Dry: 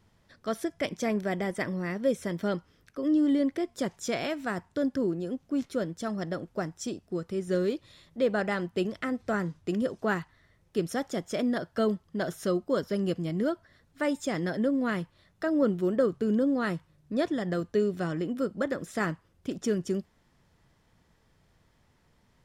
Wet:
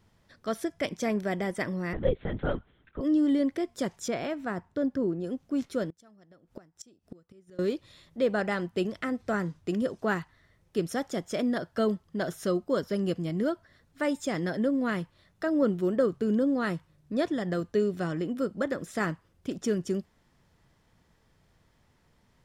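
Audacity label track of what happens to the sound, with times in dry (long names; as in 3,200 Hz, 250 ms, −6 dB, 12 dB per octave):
1.930000	3.010000	linear-prediction vocoder at 8 kHz whisper
4.080000	5.240000	high-shelf EQ 2,600 Hz −10.5 dB
5.870000	7.590000	gate with flip shuts at −29 dBFS, range −25 dB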